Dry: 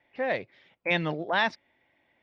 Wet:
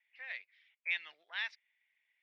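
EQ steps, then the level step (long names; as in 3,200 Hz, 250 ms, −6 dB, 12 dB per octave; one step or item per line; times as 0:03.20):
resonant band-pass 2,200 Hz, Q 2.1
first difference
+4.0 dB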